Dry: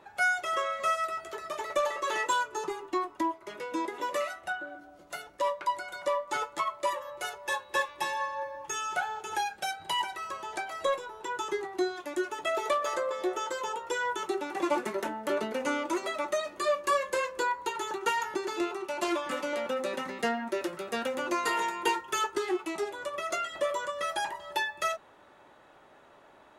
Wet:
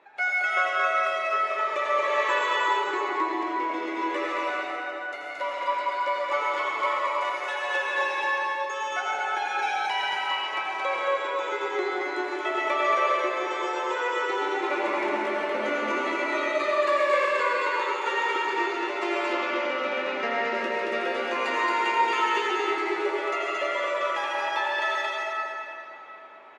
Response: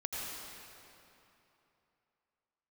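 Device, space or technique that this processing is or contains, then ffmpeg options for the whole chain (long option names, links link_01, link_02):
station announcement: -filter_complex "[0:a]highpass=310,lowpass=4200,equalizer=frequency=2200:width_type=o:width=0.43:gain=8,aecho=1:1:131.2|224.5:0.316|0.794[link_01];[1:a]atrim=start_sample=2205[link_02];[link_01][link_02]afir=irnorm=-1:irlink=0,asettb=1/sr,asplit=3[link_03][link_04][link_05];[link_03]atrim=end=19.334[link_06];[link_04]atrim=start=19.33:end=20.54,asetpts=PTS-STARTPTS,afade=type=in:duration=0.004:curve=qsin,afade=type=out:start_time=1.206:duration=0.004:curve=qsin,lowpass=frequency=6800:width=0.5412,lowpass=frequency=6800:width=1.3066[link_07];[link_05]atrim=start=20.536[link_08];[link_06][link_07]acrossfade=duration=0.004:curve1=hsin:curve2=qsin[link_09];[link_09][link_08]acrossfade=duration=0.004:curve1=qsin:curve2=hsin"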